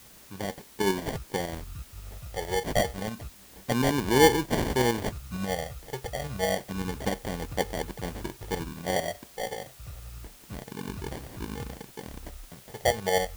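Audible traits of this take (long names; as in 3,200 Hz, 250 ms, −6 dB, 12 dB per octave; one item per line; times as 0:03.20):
phaser sweep stages 8, 0.29 Hz, lowest notch 270–1,500 Hz
aliases and images of a low sample rate 1,300 Hz, jitter 0%
tremolo saw up 11 Hz, depth 50%
a quantiser's noise floor 10 bits, dither triangular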